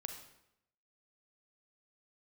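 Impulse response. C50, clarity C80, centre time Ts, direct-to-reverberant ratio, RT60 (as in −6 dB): 6.5 dB, 9.0 dB, 23 ms, 5.0 dB, 0.80 s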